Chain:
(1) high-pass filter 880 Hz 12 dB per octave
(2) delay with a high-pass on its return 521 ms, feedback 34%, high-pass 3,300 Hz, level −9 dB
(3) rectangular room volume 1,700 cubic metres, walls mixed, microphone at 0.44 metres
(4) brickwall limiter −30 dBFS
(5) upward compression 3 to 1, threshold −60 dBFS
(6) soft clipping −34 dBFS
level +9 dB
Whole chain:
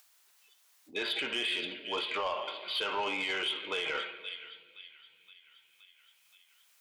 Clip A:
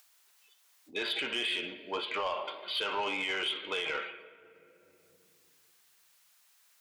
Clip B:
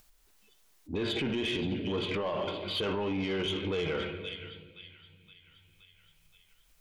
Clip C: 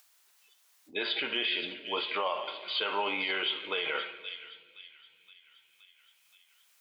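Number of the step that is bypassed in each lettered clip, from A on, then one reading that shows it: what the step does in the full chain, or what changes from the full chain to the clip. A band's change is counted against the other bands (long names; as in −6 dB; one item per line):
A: 2, change in momentary loudness spread −10 LU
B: 1, 125 Hz band +25.5 dB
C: 6, distortion level −17 dB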